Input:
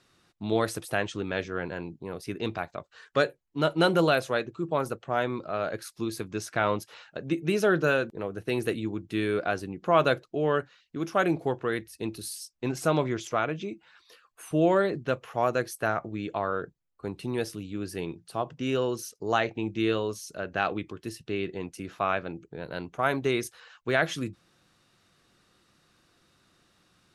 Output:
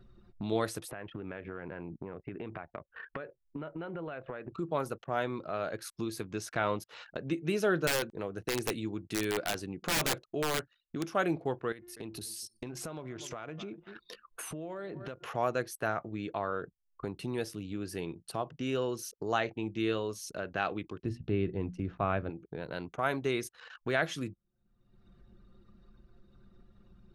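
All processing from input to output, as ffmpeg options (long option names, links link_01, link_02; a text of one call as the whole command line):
ffmpeg -i in.wav -filter_complex "[0:a]asettb=1/sr,asplit=3[link_01][link_02][link_03];[link_01]atrim=end=0.914[link_04];[link_02]atrim=start=0.91:end=4.52,asetpts=PTS-STARTPTS,afade=type=in:duration=0.004:curve=qsin,afade=type=out:start_time=3.606:duration=0.004:curve=qsin,acompressor=threshold=-38dB:ratio=6:attack=3.2:release=140:knee=1:detection=peak,lowpass=frequency=2500:width=0.5412,lowpass=frequency=2500:width=1.3066[link_05];[link_03]atrim=start=4.516[link_06];[link_04][link_05]acrossfade=duration=0.004:curve1=hsin:curve2=qsin[link_07];[link_07][link_06]acrossfade=duration=0.004:curve1=qsin:curve2=hsin,asettb=1/sr,asplit=3[link_08][link_09][link_10];[link_08]atrim=end=7.874[link_11];[link_09]atrim=start=7.87:end=11.07,asetpts=PTS-STARTPTS,afade=type=in:duration=0.004:curve=qsin,afade=type=out:start_time=3.196:duration=0.004:curve=qsin,lowpass=8000,highshelf=frequency=6000:gain=11.5,aeval=exprs='(mod(8.41*val(0)+1,2)-1)/8.41':channel_layout=same[link_12];[link_10]atrim=start=11.066[link_13];[link_11][link_12]acrossfade=duration=0.004:curve1=hsin:curve2=qsin[link_14];[link_14][link_13]acrossfade=duration=0.004:curve1=qsin:curve2=hsin,asettb=1/sr,asplit=3[link_15][link_16][link_17];[link_15]atrim=end=11.724[link_18];[link_16]atrim=start=11.72:end=15.27,asetpts=PTS-STARTPTS,afade=type=in:duration=0.004:curve=qsin,afade=type=out:start_time=3.546:duration=0.004:curve=qsin,bandreject=frequency=354.1:width_type=h:width=4,bandreject=frequency=708.2:width_type=h:width=4,bandreject=frequency=1062.3:width_type=h:width=4,bandreject=frequency=1416.4:width_type=h:width=4,bandreject=frequency=1770.5:width_type=h:width=4,bandreject=frequency=2124.6:width_type=h:width=4,bandreject=frequency=2478.7:width_type=h:width=4,bandreject=frequency=2832.8:width_type=h:width=4,bandreject=frequency=3186.9:width_type=h:width=4,bandreject=frequency=3541:width_type=h:width=4,bandreject=frequency=3895.1:width_type=h:width=4,bandreject=frequency=4249.2:width_type=h:width=4,bandreject=frequency=4603.3:width_type=h:width=4,bandreject=frequency=4957.4:width_type=h:width=4,bandreject=frequency=5311.5:width_type=h:width=4,bandreject=frequency=5665.6:width_type=h:width=4,bandreject=frequency=6019.7:width_type=h:width=4,bandreject=frequency=6373.8:width_type=h:width=4,bandreject=frequency=6727.9:width_type=h:width=4,bandreject=frequency=7082:width_type=h:width=4,bandreject=frequency=7436.1:width_type=h:width=4,bandreject=frequency=7790.2:width_type=h:width=4,bandreject=frequency=8144.3:width_type=h:width=4,bandreject=frequency=8498.4:width_type=h:width=4,bandreject=frequency=8852.5:width_type=h:width=4,bandreject=frequency=9206.6:width_type=h:width=4,bandreject=frequency=9560.7:width_type=h:width=4,bandreject=frequency=9914.8:width_type=h:width=4,bandreject=frequency=10268.9:width_type=h:width=4,bandreject=frequency=10623:width_type=h:width=4,bandreject=frequency=10977.1:width_type=h:width=4,bandreject=frequency=11331.2:width_type=h:width=4,bandreject=frequency=11685.3:width_type=h:width=4,bandreject=frequency=12039.4:width_type=h:width=4,aecho=1:1:243|486:0.0668|0.0127,atrim=end_sample=156555,acompressor=threshold=-42dB:ratio=4:attack=3.2:release=140:knee=1:detection=peak[link_19];[link_17]atrim=start=15.266[link_20];[link_18][link_19]acrossfade=duration=0.004:curve1=hsin:curve2=qsin[link_21];[link_21][link_20]acrossfade=duration=0.004:curve1=qsin:curve2=hsin,asettb=1/sr,asplit=3[link_22][link_23][link_24];[link_22]atrim=end=21.034[link_25];[link_23]atrim=start=21.03:end=22.3,asetpts=PTS-STARTPTS,afade=type=in:duration=0.004:curve=qsin,afade=type=out:start_time=1.266:duration=0.004:curve=qsin,aemphasis=mode=reproduction:type=riaa,bandreject=frequency=60:width_type=h:width=6,bandreject=frequency=120:width_type=h:width=6,bandreject=frequency=180:width_type=h:width=6,bandreject=frequency=240:width_type=h:width=6[link_26];[link_24]atrim=start=22.296[link_27];[link_25][link_26]acrossfade=duration=0.004:curve1=hsin:curve2=qsin[link_28];[link_28][link_27]acrossfade=duration=0.004:curve1=qsin:curve2=hsin,anlmdn=0.00251,acompressor=mode=upward:threshold=-27dB:ratio=2.5,volume=-5dB" out.wav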